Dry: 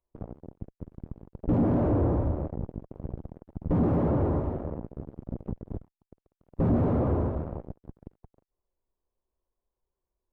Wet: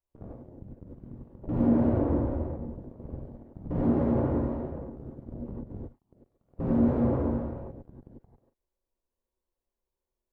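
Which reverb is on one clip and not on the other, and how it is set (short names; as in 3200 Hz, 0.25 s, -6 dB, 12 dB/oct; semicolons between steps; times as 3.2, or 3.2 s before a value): non-linear reverb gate 0.12 s rising, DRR -5 dB; gain -8 dB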